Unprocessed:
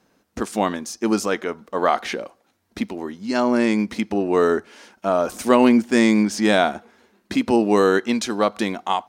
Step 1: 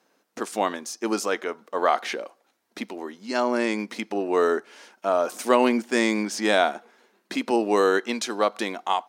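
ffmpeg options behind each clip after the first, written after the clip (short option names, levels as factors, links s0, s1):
-af "highpass=340,volume=0.794"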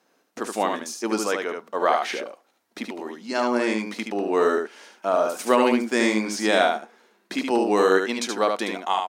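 -af "aecho=1:1:74:0.596"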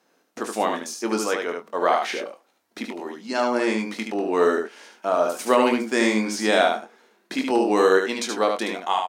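-filter_complex "[0:a]asplit=2[s0][s1];[s1]adelay=23,volume=0.376[s2];[s0][s2]amix=inputs=2:normalize=0"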